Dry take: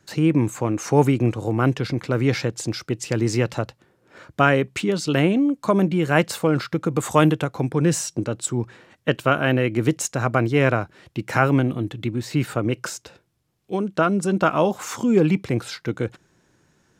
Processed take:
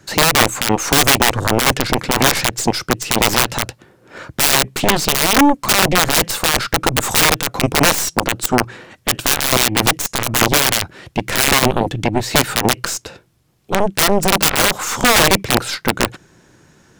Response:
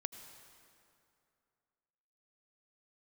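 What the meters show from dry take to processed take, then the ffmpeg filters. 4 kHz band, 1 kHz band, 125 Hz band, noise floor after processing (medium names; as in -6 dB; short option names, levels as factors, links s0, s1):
+18.0 dB, +8.5 dB, -1.5 dB, -54 dBFS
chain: -af "aeval=exprs='(mod(4.73*val(0)+1,2)-1)/4.73':c=same,aeval=exprs='0.224*(cos(1*acos(clip(val(0)/0.224,-1,1)))-cos(1*PI/2))+0.1*(cos(3*acos(clip(val(0)/0.224,-1,1)))-cos(3*PI/2))+0.0141*(cos(6*acos(clip(val(0)/0.224,-1,1)))-cos(6*PI/2))+0.00501*(cos(8*acos(clip(val(0)/0.224,-1,1)))-cos(8*PI/2))':c=same,alimiter=level_in=12.6:limit=0.891:release=50:level=0:latency=1,volume=0.891"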